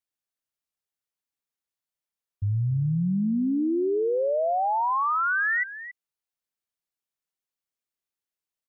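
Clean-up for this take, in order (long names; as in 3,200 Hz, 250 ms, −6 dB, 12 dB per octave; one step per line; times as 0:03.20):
echo removal 277 ms −14 dB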